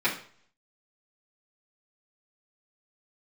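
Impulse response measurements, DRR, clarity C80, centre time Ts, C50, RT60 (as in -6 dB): -10.5 dB, 13.5 dB, 20 ms, 9.0 dB, 0.50 s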